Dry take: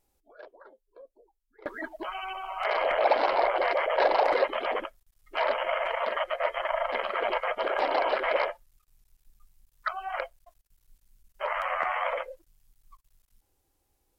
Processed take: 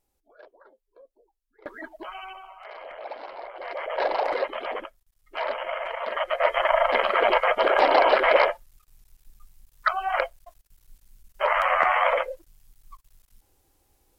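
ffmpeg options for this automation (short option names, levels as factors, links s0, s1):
-af "volume=10,afade=t=out:st=2.21:d=0.4:silence=0.251189,afade=t=in:st=3.55:d=0.46:silence=0.237137,afade=t=in:st=6.04:d=0.55:silence=0.316228"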